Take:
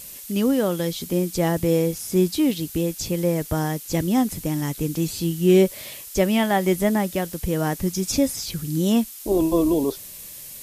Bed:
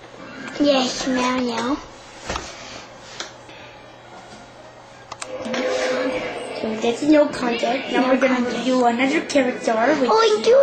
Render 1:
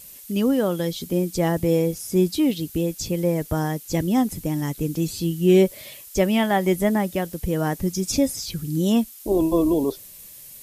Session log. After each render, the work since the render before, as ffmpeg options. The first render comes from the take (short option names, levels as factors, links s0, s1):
-af "afftdn=nr=6:nf=-39"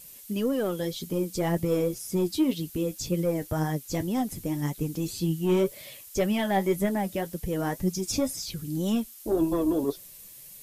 -af "asoftclip=type=tanh:threshold=0.251,flanger=delay=5.1:depth=5.4:regen=48:speed=1.9:shape=triangular"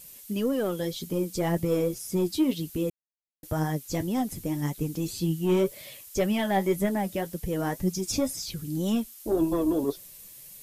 -filter_complex "[0:a]asplit=3[s0][s1][s2];[s0]atrim=end=2.9,asetpts=PTS-STARTPTS,afade=t=out:st=2.896:d=0.004:c=hsin[s3];[s1]atrim=start=2.9:end=3.43,asetpts=PTS-STARTPTS,volume=0[s4];[s2]atrim=start=3.43,asetpts=PTS-STARTPTS,afade=t=in:d=0.004:c=hsin[s5];[s3][s4][s5]concat=n=3:v=0:a=1"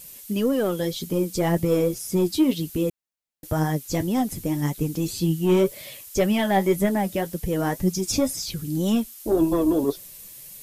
-af "volume=1.68"